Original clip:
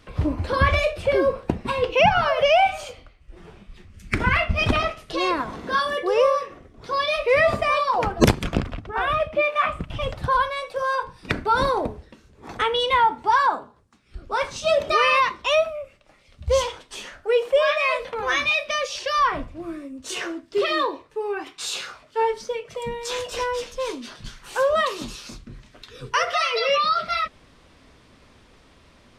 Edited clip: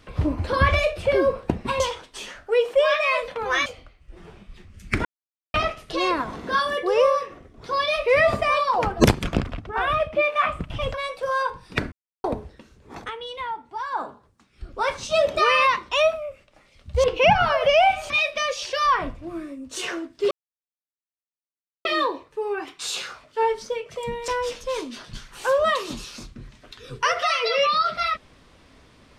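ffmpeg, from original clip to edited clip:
ffmpeg -i in.wav -filter_complex "[0:a]asplit=14[link_01][link_02][link_03][link_04][link_05][link_06][link_07][link_08][link_09][link_10][link_11][link_12][link_13][link_14];[link_01]atrim=end=1.802[link_15];[link_02]atrim=start=16.568:end=18.432[link_16];[link_03]atrim=start=2.858:end=4.25,asetpts=PTS-STARTPTS,afade=type=out:start_time=1.388:duration=0.004:curve=hsin[link_17];[link_04]atrim=start=4.25:end=4.74,asetpts=PTS-STARTPTS,volume=0[link_18];[link_05]atrim=start=4.74:end=10.142,asetpts=PTS-STARTPTS,afade=type=in:duration=0.004:curve=hsin[link_19];[link_06]atrim=start=10.468:end=11.45,asetpts=PTS-STARTPTS,afade=type=out:start_time=0.978:duration=0.004:curve=hsin[link_20];[link_07]atrim=start=11.45:end=11.77,asetpts=PTS-STARTPTS,volume=0[link_21];[link_08]atrim=start=11.77:end=12.64,asetpts=PTS-STARTPTS,afade=type=in:duration=0.004:curve=hsin,afade=type=out:start_time=0.72:duration=0.15:silence=0.237137[link_22];[link_09]atrim=start=12.64:end=13.44,asetpts=PTS-STARTPTS,volume=-12.5dB[link_23];[link_10]atrim=start=13.44:end=16.572,asetpts=PTS-STARTPTS,afade=type=in:duration=0.15:silence=0.237137[link_24];[link_11]atrim=start=1.798:end=2.862[link_25];[link_12]atrim=start=18.428:end=20.64,asetpts=PTS-STARTPTS,afade=type=out:start_time=2.208:duration=0.004:curve=hsin,apad=pad_dur=1.54[link_26];[link_13]atrim=start=20.64:end=23.072,asetpts=PTS-STARTPTS,afade=type=in:duration=0.004:curve=hsin[link_27];[link_14]atrim=start=23.388[link_28];[link_15][link_16]acrossfade=duration=0.004:curve1=hsin:curve2=hsin[link_29];[link_17][link_18][link_19]concat=n=3:v=0:a=1[link_30];[link_29][link_30]acrossfade=duration=0.004:curve1=hsin:curve2=hsin[link_31];[link_20][link_21][link_22][link_23][link_24]concat=n=5:v=0:a=1[link_32];[link_31][link_32]acrossfade=duration=0.004:curve1=hsin:curve2=hsin[link_33];[link_33][link_25]acrossfade=duration=0.004:curve1=hsin:curve2=hsin[link_34];[link_26][link_27]concat=n=2:v=0:a=1[link_35];[link_34][link_35]acrossfade=duration=0.004:curve1=hsin:curve2=hsin[link_36];[link_36][link_28]acrossfade=duration=0.004:curve1=hsin:curve2=hsin" out.wav

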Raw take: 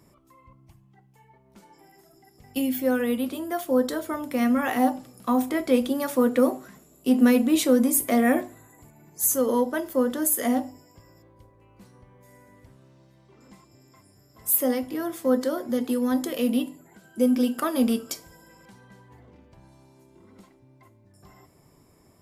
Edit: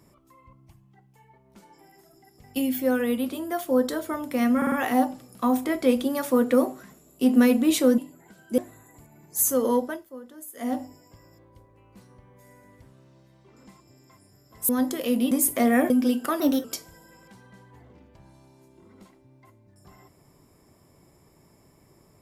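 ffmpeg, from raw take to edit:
ffmpeg -i in.wav -filter_complex "[0:a]asplit=13[link_01][link_02][link_03][link_04][link_05][link_06][link_07][link_08][link_09][link_10][link_11][link_12][link_13];[link_01]atrim=end=4.622[link_14];[link_02]atrim=start=4.568:end=4.622[link_15];[link_03]atrim=start=4.568:end=4.622[link_16];[link_04]atrim=start=4.568:end=7.832[link_17];[link_05]atrim=start=16.638:end=17.242[link_18];[link_06]atrim=start=8.418:end=9.89,asetpts=PTS-STARTPTS,afade=type=out:start_time=1.212:duration=0.26:silence=0.11885[link_19];[link_07]atrim=start=9.89:end=10.39,asetpts=PTS-STARTPTS,volume=-18.5dB[link_20];[link_08]atrim=start=10.39:end=14.532,asetpts=PTS-STARTPTS,afade=type=in:duration=0.26:silence=0.11885[link_21];[link_09]atrim=start=16.018:end=16.642[link_22];[link_10]atrim=start=7.828:end=8.422[link_23];[link_11]atrim=start=17.238:end=17.744[link_24];[link_12]atrim=start=17.74:end=18.02,asetpts=PTS-STARTPTS,asetrate=51156,aresample=44100[link_25];[link_13]atrim=start=18.016[link_26];[link_14][link_15]acrossfade=duration=0.004:curve1=hsin:curve2=hsin[link_27];[link_27][link_16]acrossfade=duration=0.004:curve1=hsin:curve2=hsin[link_28];[link_28][link_17]acrossfade=duration=0.004:curve1=hsin:curve2=hsin[link_29];[link_29][link_18]acrossfade=duration=0.004:curve1=hsin:curve2=hsin[link_30];[link_19][link_20][link_21]concat=n=3:v=0:a=1[link_31];[link_30][link_31]acrossfade=duration=0.004:curve1=hsin:curve2=hsin[link_32];[link_32][link_22]acrossfade=duration=0.004:curve1=hsin:curve2=hsin[link_33];[link_33][link_23]acrossfade=duration=0.004:curve1=hsin:curve2=hsin[link_34];[link_34][link_24]acrossfade=duration=0.004:curve1=hsin:curve2=hsin[link_35];[link_35][link_25]acrossfade=duration=0.004:curve1=hsin:curve2=hsin[link_36];[link_36][link_26]acrossfade=duration=0.004:curve1=hsin:curve2=hsin" out.wav

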